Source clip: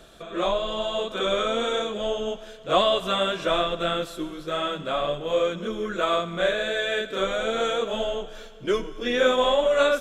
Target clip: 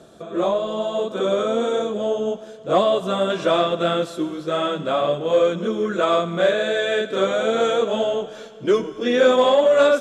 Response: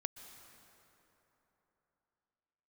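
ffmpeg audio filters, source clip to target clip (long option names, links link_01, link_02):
-af "asetnsamples=nb_out_samples=441:pad=0,asendcmd='3.3 equalizer g -7',equalizer=frequency=2600:width=0.49:gain=-14,asoftclip=type=tanh:threshold=-13dB,highpass=130,lowpass=7800,volume=8dB"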